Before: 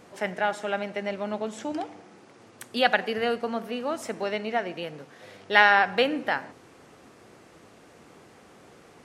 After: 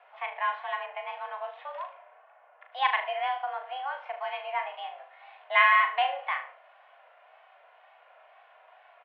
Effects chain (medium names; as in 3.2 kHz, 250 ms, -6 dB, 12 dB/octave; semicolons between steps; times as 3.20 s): mistuned SSB +260 Hz 320–2900 Hz; comb 2.8 ms, depth 39%; wow and flutter 58 cents; on a send: flutter echo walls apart 6.5 m, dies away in 0.33 s; 0.86–2.72 s: on the sum: level-controlled noise filter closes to 1.4 kHz, open at -27 dBFS; trim -5 dB